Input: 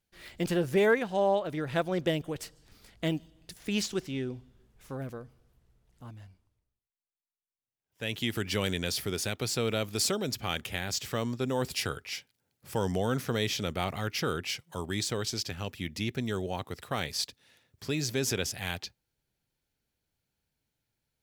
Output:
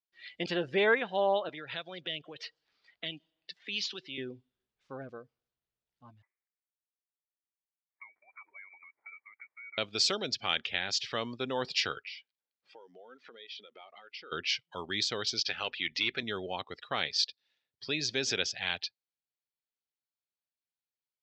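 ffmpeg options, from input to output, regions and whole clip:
-filter_complex "[0:a]asettb=1/sr,asplit=3[s0][s1][s2];[s0]atrim=end=1.494[s3];[s1]atrim=start=1.49:end=4.18,asetpts=PTS-STARTPTS,afade=t=in:d=0.004:c=qsin,afade=t=out:st=2.686:d=0.004:c=qsin,acrossover=split=150|3000[s4][s5][s6];[s5]acompressor=threshold=0.00891:ratio=5:attack=3.2:release=140:knee=2.83:detection=peak[s7];[s4][s7][s6]amix=inputs=3:normalize=0,asplit=2[s8][s9];[s9]highpass=f=720:p=1,volume=3.55,asoftclip=type=tanh:threshold=0.0944[s10];[s8][s10]amix=inputs=2:normalize=0,lowpass=f=2400:p=1,volume=0.501[s11];[s2]atrim=start=4.176[s12];[s3][s11]acrossfade=d=0.004:c1=hsin:c2=qsin[s13];[s13][s12]acrossfade=d=0.004:c1=qsin:c2=hsin,asettb=1/sr,asplit=3[s14][s15][s16];[s14]atrim=end=6.224[s17];[s15]atrim=start=6.22:end=9.78,asetpts=PTS-STARTPTS,afade=t=in:d=0.004:c=qsin,afade=t=out:st=3.556:d=0.004:c=qsin,highpass=f=450:w=0.5412,highpass=f=450:w=1.3066,acompressor=threshold=0.00631:ratio=16:attack=3.2:release=140:knee=1:detection=peak,lowpass=f=2300:t=q:w=0.5098,lowpass=f=2300:t=q:w=0.6013,lowpass=f=2300:t=q:w=0.9,lowpass=f=2300:t=q:w=2.563,afreqshift=-2700[s18];[s16]atrim=start=9.776[s19];[s17][s18]acrossfade=d=0.004:c1=hsin:c2=qsin[s20];[s20][s19]acrossfade=d=0.004:c1=qsin:c2=hsin,asettb=1/sr,asplit=3[s21][s22][s23];[s21]atrim=end=12.084[s24];[s22]atrim=start=12.08:end=14.32,asetpts=PTS-STARTPTS,afade=t=in:d=0.004:c=qsin,afade=t=out:st=2.236:d=0.004:c=qsin,acompressor=threshold=0.00891:ratio=10:attack=3.2:release=140:knee=1:detection=peak,highpass=250,lowpass=5500[s25];[s23]atrim=start=14.316[s26];[s24][s25]acrossfade=d=0.004:c1=hsin:c2=qsin[s27];[s27][s26]acrossfade=d=0.004:c1=qsin:c2=hsin,asettb=1/sr,asplit=3[s28][s29][s30];[s28]atrim=end=15.464[s31];[s29]atrim=start=15.46:end=16.23,asetpts=PTS-STARTPTS,afade=t=in:d=0.004:c=qsin,afade=t=out:st=0.766:d=0.004:c=qsin,equalizer=f=210:t=o:w=0.28:g=-6,asplit=2[s32][s33];[s33]highpass=f=720:p=1,volume=3.98,asoftclip=type=tanh:threshold=0.112[s34];[s32][s34]amix=inputs=2:normalize=0,lowpass=f=4000:p=1,volume=0.501,aeval=exprs='val(0)+0.00398*(sin(2*PI*50*n/s)+sin(2*PI*2*50*n/s)/2+sin(2*PI*3*50*n/s)/3+sin(2*PI*4*50*n/s)/4+sin(2*PI*5*50*n/s)/5)':c=same[s35];[s30]atrim=start=16.226[s36];[s31][s35]acrossfade=d=0.004:c1=hsin:c2=qsin[s37];[s37][s36]acrossfade=d=0.004:c1=qsin:c2=hsin,lowpass=f=4500:w=0.5412,lowpass=f=4500:w=1.3066,aemphasis=mode=production:type=riaa,afftdn=nr=19:nf=-45"

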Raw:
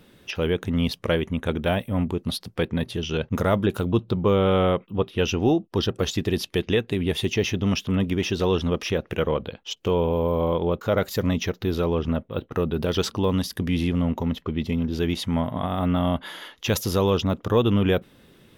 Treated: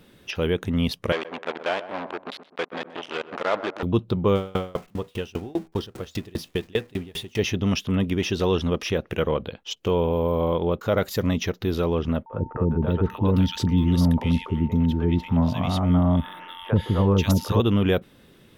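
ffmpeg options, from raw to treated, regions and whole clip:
-filter_complex "[0:a]asettb=1/sr,asplit=3[s0][s1][s2];[s0]atrim=end=1.124[s3];[s1]atrim=start=1.12:end=3.83,asetpts=PTS-STARTPTS,afade=t=in:d=0.004:c=qsin,afade=t=out:st=2.706:d=0.004:c=qsin,acrusher=bits=3:mix=0:aa=0.5,highpass=520,lowpass=3200,asplit=2[s4][s5];[s5]adelay=127,lowpass=f=1100:p=1,volume=0.266,asplit=2[s6][s7];[s7]adelay=127,lowpass=f=1100:p=1,volume=0.43,asplit=2[s8][s9];[s9]adelay=127,lowpass=f=1100:p=1,volume=0.43,asplit=2[s10][s11];[s11]adelay=127,lowpass=f=1100:p=1,volume=0.43[s12];[s4][s6][s8][s10][s12]amix=inputs=5:normalize=0,atrim=end_sample=119511[s13];[s2]atrim=start=3.826[s14];[s3][s13]acrossfade=d=0.004:c1=hsin:c2=qsin[s15];[s15][s14]acrossfade=d=0.004:c1=qsin:c2=hsin,asettb=1/sr,asplit=3[s16][s17][s18];[s16]atrim=end=4.354[s19];[s17]atrim=start=4.35:end=7.39,asetpts=PTS-STARTPTS,afade=t=in:d=0.004:c=qsin,afade=t=out:st=3.036:d=0.004:c=qsin,aeval=exprs='val(0)+0.5*0.0224*sgn(val(0))':c=same,bandreject=f=80.93:t=h:w=4,bandreject=f=161.86:t=h:w=4,bandreject=f=242.79:t=h:w=4,bandreject=f=323.72:t=h:w=4,bandreject=f=404.65:t=h:w=4,bandreject=f=485.58:t=h:w=4,bandreject=f=566.51:t=h:w=4,bandreject=f=647.44:t=h:w=4,bandreject=f=728.37:t=h:w=4,bandreject=f=809.3:t=h:w=4,bandreject=f=890.23:t=h:w=4,bandreject=f=971.16:t=h:w=4,bandreject=f=1052.09:t=h:w=4,bandreject=f=1133.02:t=h:w=4,bandreject=f=1213.95:t=h:w=4,bandreject=f=1294.88:t=h:w=4,bandreject=f=1375.81:t=h:w=4,bandreject=f=1456.74:t=h:w=4,bandreject=f=1537.67:t=h:w=4,bandreject=f=1618.6:t=h:w=4,bandreject=f=1699.53:t=h:w=4,bandreject=f=1780.46:t=h:w=4,bandreject=f=1861.39:t=h:w=4,bandreject=f=1942.32:t=h:w=4,bandreject=f=2023.25:t=h:w=4,bandreject=f=2104.18:t=h:w=4,bandreject=f=2185.11:t=h:w=4,bandreject=f=2266.04:t=h:w=4,bandreject=f=2346.97:t=h:w=4,bandreject=f=2427.9:t=h:w=4,bandreject=f=2508.83:t=h:w=4,aeval=exprs='val(0)*pow(10,-30*if(lt(mod(5*n/s,1),2*abs(5)/1000),1-mod(5*n/s,1)/(2*abs(5)/1000),(mod(5*n/s,1)-2*abs(5)/1000)/(1-2*abs(5)/1000))/20)':c=same[s20];[s18]atrim=start=7.386[s21];[s19][s20]acrossfade=d=0.004:c1=hsin:c2=qsin[s22];[s22][s21]acrossfade=d=0.004:c1=qsin:c2=hsin,asettb=1/sr,asplit=3[s23][s24][s25];[s23]atrim=end=12.264[s26];[s24]atrim=start=12.26:end=17.6,asetpts=PTS-STARTPTS,afade=t=in:d=0.004:c=qsin,afade=t=out:st=5.336:d=0.004:c=qsin,bass=f=250:g=6,treble=f=4000:g=-5,aeval=exprs='val(0)+0.00891*sin(2*PI*900*n/s)':c=same,acrossover=split=500|1700[s27][s28][s29];[s27]adelay=40[s30];[s29]adelay=540[s31];[s30][s28][s31]amix=inputs=3:normalize=0,atrim=end_sample=235494[s32];[s25]atrim=start=17.596[s33];[s26][s32]acrossfade=d=0.004:c1=hsin:c2=qsin[s34];[s34][s33]acrossfade=d=0.004:c1=qsin:c2=hsin"

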